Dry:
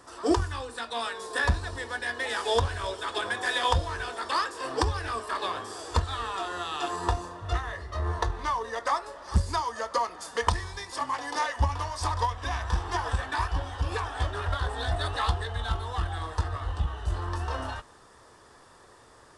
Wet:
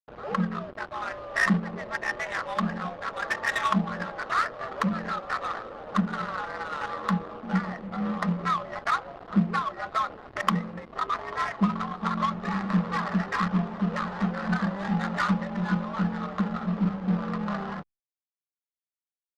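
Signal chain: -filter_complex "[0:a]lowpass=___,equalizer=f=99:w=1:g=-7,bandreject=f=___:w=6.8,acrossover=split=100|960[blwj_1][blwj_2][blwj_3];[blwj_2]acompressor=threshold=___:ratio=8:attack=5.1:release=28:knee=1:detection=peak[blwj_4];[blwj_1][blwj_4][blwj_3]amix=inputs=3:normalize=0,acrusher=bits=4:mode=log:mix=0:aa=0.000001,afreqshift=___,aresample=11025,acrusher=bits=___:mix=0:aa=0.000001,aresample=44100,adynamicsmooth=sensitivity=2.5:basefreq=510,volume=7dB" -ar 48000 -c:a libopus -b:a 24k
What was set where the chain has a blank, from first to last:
3000, 810, -44dB, 130, 6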